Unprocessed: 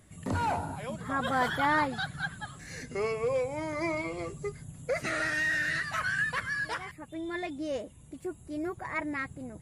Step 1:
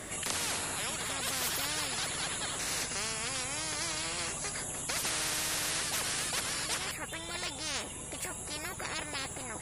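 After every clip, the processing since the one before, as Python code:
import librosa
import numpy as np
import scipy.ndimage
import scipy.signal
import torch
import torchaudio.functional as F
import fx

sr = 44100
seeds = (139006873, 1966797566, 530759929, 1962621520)

y = fx.spectral_comp(x, sr, ratio=10.0)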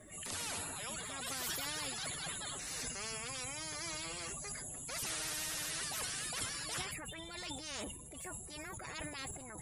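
y = fx.bin_expand(x, sr, power=2.0)
y = fx.transient(y, sr, attack_db=-6, sustain_db=10)
y = y * librosa.db_to_amplitude(-1.5)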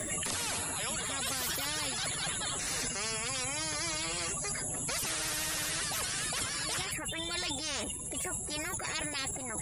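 y = fx.band_squash(x, sr, depth_pct=100)
y = y * librosa.db_to_amplitude(6.0)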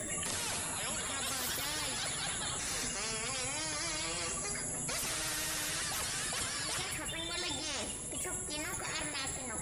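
y = fx.rev_plate(x, sr, seeds[0], rt60_s=1.5, hf_ratio=0.75, predelay_ms=0, drr_db=5.5)
y = y * librosa.db_to_amplitude(-3.0)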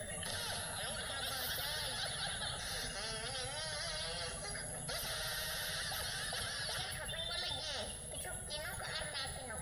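y = fx.fixed_phaser(x, sr, hz=1600.0, stages=8)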